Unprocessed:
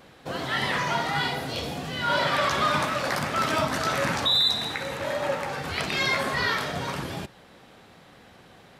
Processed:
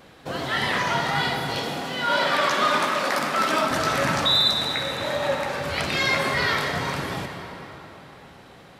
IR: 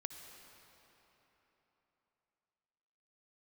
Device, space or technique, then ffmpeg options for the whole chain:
cathedral: -filter_complex "[0:a]asettb=1/sr,asplit=3[a][b][c];[a]atrim=end=1.584[d];[b]atrim=start=1.58:end=3.7,asetpts=PTS-STARTPTS,afade=t=in:d=0.004:c=qsin,afade=t=out:st=2.116:d=0.004:c=qsin,highpass=f=190:w=0.5412,highpass=f=190:w=1.3066[e];[c]atrim=start=3.696[f];[d][e]acrossfade=d=0.004:c1=hsin:c2=qsin[g];[g][f]acrossfade=d=0.004:c1=qsin:c2=hsin[h];[1:a]atrim=start_sample=2205[i];[h][i]afir=irnorm=-1:irlink=0,volume=5.5dB"

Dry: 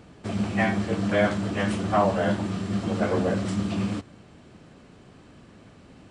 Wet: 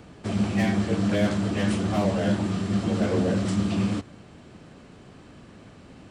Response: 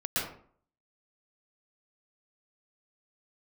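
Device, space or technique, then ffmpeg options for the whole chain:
one-band saturation: -filter_complex "[0:a]acrossover=split=470|2900[a][b][c];[b]asoftclip=type=tanh:threshold=-35dB[d];[a][d][c]amix=inputs=3:normalize=0,volume=2.5dB"

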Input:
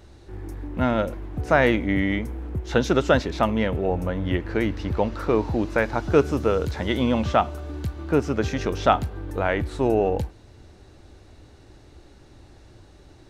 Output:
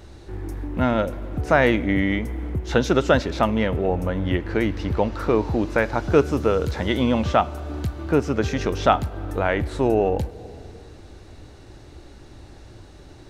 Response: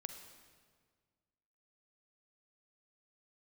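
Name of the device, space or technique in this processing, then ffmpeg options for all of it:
ducked reverb: -filter_complex "[0:a]asplit=3[a][b][c];[1:a]atrim=start_sample=2205[d];[b][d]afir=irnorm=-1:irlink=0[e];[c]apad=whole_len=586324[f];[e][f]sidechaincompress=threshold=-34dB:ratio=3:attack=16:release=361,volume=1.5dB[g];[a][g]amix=inputs=2:normalize=0"

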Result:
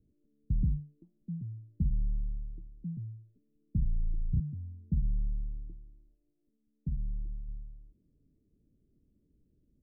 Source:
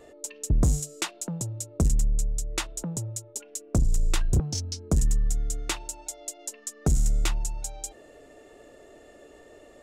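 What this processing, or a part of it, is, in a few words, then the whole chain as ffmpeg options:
the neighbour's flat through the wall: -filter_complex "[0:a]lowpass=f=210:w=0.5412,lowpass=f=210:w=1.3066,equalizer=f=170:t=o:w=0.77:g=4,asplit=3[a][b][c];[a]afade=t=out:st=6.14:d=0.02[d];[b]tiltshelf=f=1.5k:g=-4.5,afade=t=in:st=6.14:d=0.02,afade=t=out:st=7.47:d=0.02[e];[c]afade=t=in:st=7.47:d=0.02[f];[d][e][f]amix=inputs=3:normalize=0,volume=-7.5dB"

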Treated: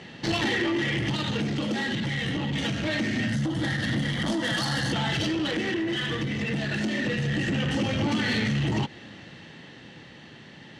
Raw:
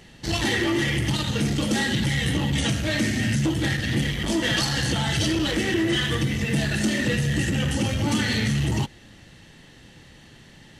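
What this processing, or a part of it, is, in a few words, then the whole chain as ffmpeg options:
AM radio: -filter_complex "[0:a]highpass=140,lowpass=4k,acompressor=threshold=-27dB:ratio=6,asoftclip=type=tanh:threshold=-25.5dB,tremolo=f=0.24:d=0.31,asettb=1/sr,asplit=3[a][b][c];[a]atrim=end=3.284[d];[b]atrim=start=3.28:end=4.93,asetpts=PTS-STARTPTS,afade=t=in:d=0.004:c=qsin,afade=t=out:st=1.646:d=0.004:c=qsin,equalizer=f=400:t=o:w=0.33:g=-10,equalizer=f=2.5k:t=o:w=0.33:g=-11,equalizer=f=10k:t=o:w=0.33:g=10[e];[c]atrim=start=4.926[f];[d][e]acrossfade=d=0.004:c1=hsin:c2=qsin[g];[g][f]acrossfade=d=0.004:c1=qsin:c2=hsin,volume=7dB"

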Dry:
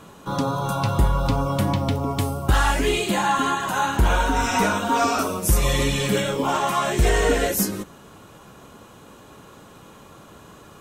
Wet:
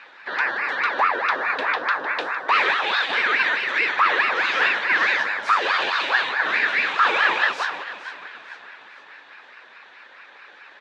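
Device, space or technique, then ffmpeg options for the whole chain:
voice changer toy: -filter_complex "[0:a]asplit=5[a][b][c][d][e];[b]adelay=457,afreqshift=69,volume=-14dB[f];[c]adelay=914,afreqshift=138,volume=-20.7dB[g];[d]adelay=1371,afreqshift=207,volume=-27.5dB[h];[e]adelay=1828,afreqshift=276,volume=-34.2dB[i];[a][f][g][h][i]amix=inputs=5:normalize=0,aeval=exprs='val(0)*sin(2*PI*850*n/s+850*0.55/4.7*sin(2*PI*4.7*n/s))':c=same,highpass=540,equalizer=f=680:t=q:w=4:g=-5,equalizer=f=1.7k:t=q:w=4:g=10,equalizer=f=2.5k:t=q:w=4:g=7,equalizer=f=3.7k:t=q:w=4:g=7,lowpass=f=4.6k:w=0.5412,lowpass=f=4.6k:w=1.3066"

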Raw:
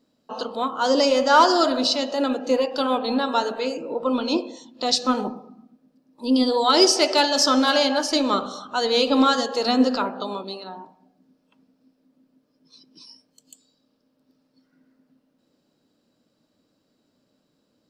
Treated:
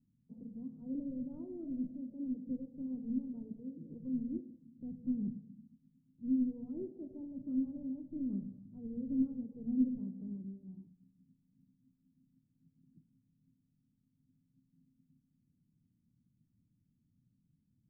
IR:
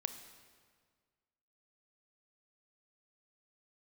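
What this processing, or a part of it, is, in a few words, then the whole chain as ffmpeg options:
the neighbour's flat through the wall: -af "lowpass=f=170:w=0.5412,lowpass=f=170:w=1.3066,equalizer=f=110:t=o:w=0.77:g=4,volume=2.5dB"

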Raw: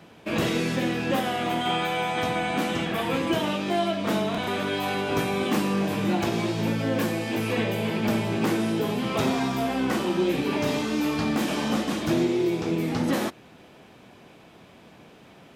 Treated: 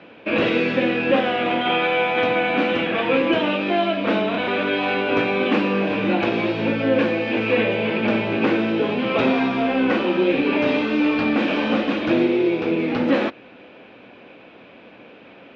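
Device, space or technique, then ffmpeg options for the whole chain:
guitar cabinet: -af "highpass=78,equalizer=f=91:t=q:w=4:g=-8,equalizer=f=150:t=q:w=4:g=-10,equalizer=f=280:t=q:w=4:g=5,equalizer=f=520:t=q:w=4:g=8,equalizer=f=1.5k:t=q:w=4:g=4,equalizer=f=2.5k:t=q:w=4:g=8,lowpass=f=3.8k:w=0.5412,lowpass=f=3.8k:w=1.3066,volume=3dB"

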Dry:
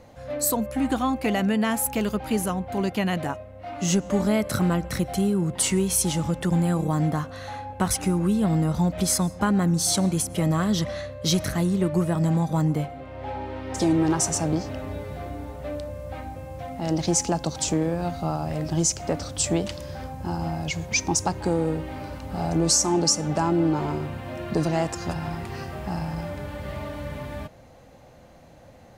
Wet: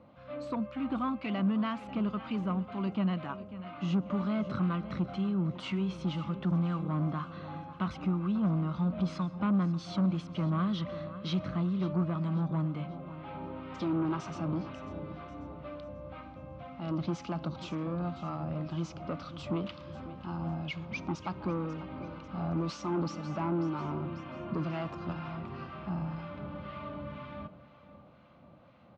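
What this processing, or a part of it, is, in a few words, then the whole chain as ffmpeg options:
guitar amplifier with harmonic tremolo: -filter_complex "[0:a]asettb=1/sr,asplit=3[a][b][c];[a]atrim=end=24.184[d];[b]atrim=start=24.18:end=24.82,asetpts=PTS-STARTPTS,afade=t=in:d=0.004:c=qsin,afade=t=out:st=0.636:d=0.004:c=qsin,bandreject=f=3.9k:w=12[e];[c]atrim=start=24.816[f];[d][e]acrossfade=d=0.004:c1=hsin:c2=qsin[g];[g][f]acrossfade=d=0.004:c1=qsin:c2=hsin,aecho=1:1:542|1084|1626|2168:0.15|0.0673|0.0303|0.0136,acrossover=split=1000[h][i];[h]aeval=exprs='val(0)*(1-0.5/2+0.5/2*cos(2*PI*2*n/s))':c=same[j];[i]aeval=exprs='val(0)*(1-0.5/2-0.5/2*cos(2*PI*2*n/s))':c=same[k];[j][k]amix=inputs=2:normalize=0,asoftclip=type=tanh:threshold=-21dB,highpass=100,equalizer=f=100:t=q:w=4:g=-4,equalizer=f=190:t=q:w=4:g=4,equalizer=f=450:t=q:w=4:g=-8,equalizer=f=780:t=q:w=4:g=-6,equalizer=f=1.2k:t=q:w=4:g=8,equalizer=f=1.8k:t=q:w=4:g=-9,lowpass=f=3.4k:w=0.5412,lowpass=f=3.4k:w=1.3066,volume=-4dB"

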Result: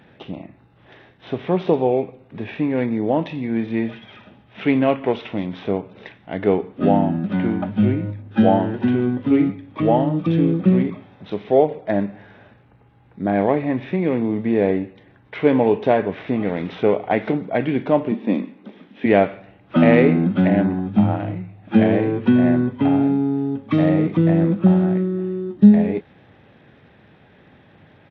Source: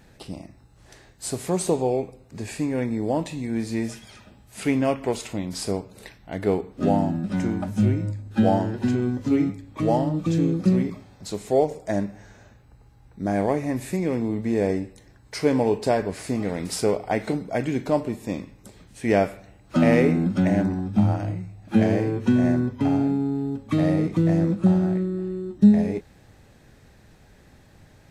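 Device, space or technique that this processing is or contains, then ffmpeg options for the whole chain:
Bluetooth headset: -filter_complex "[0:a]asettb=1/sr,asplit=3[a][b][c];[a]atrim=end=18.114[d];[b]atrim=start=18.11:end=19.06,asetpts=PTS-STARTPTS,afade=t=in:d=0.004:c=qsin,afade=t=out:st=0.946:d=0.004:c=qsin,lowshelf=f=150:t=q:w=3:g=-13.5[e];[c]atrim=start=19.056[f];[d][e]acrossfade=d=0.004:c1=hsin:c2=qsin[g];[g][f]acrossfade=d=0.004:c1=qsin:c2=hsin,highpass=130,aresample=8000,aresample=44100,volume=5dB" -ar 32000 -c:a sbc -b:a 64k

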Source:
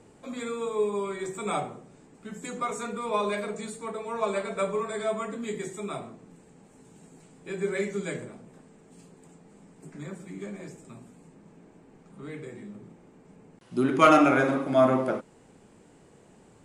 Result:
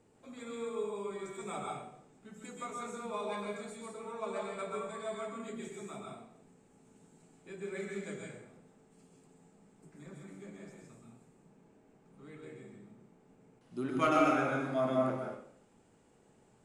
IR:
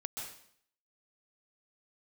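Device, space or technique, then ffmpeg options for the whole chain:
bathroom: -filter_complex "[1:a]atrim=start_sample=2205[a];[0:a][a]afir=irnorm=-1:irlink=0,volume=-9dB"

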